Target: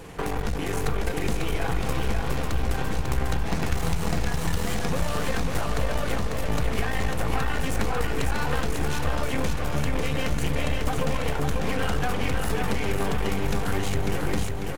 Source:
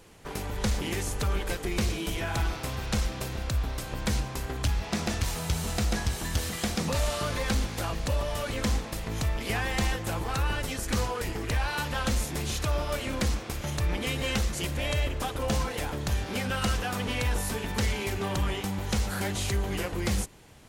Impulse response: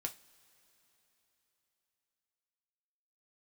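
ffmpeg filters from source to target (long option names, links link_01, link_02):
-filter_complex "[0:a]acompressor=threshold=-33dB:ratio=20,atempo=1.4,aeval=exprs='clip(val(0),-1,0.00422)':channel_layout=same,aecho=1:1:546|1092|1638|2184|2730:0.631|0.271|0.117|0.0502|0.0216,asplit=2[link_01][link_02];[1:a]atrim=start_sample=2205,lowpass=2900[link_03];[link_02][link_03]afir=irnorm=-1:irlink=0,volume=1dB[link_04];[link_01][link_04]amix=inputs=2:normalize=0,volume=7.5dB"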